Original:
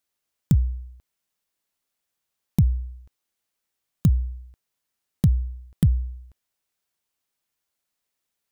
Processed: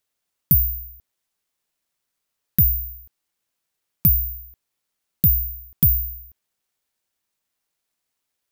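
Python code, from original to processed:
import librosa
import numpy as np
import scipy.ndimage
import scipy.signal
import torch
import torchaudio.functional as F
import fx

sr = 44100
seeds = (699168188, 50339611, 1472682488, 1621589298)

y = (np.kron(x[::3], np.eye(3)[0]) * 3)[:len(x)]
y = y * 10.0 ** (-3.0 / 20.0)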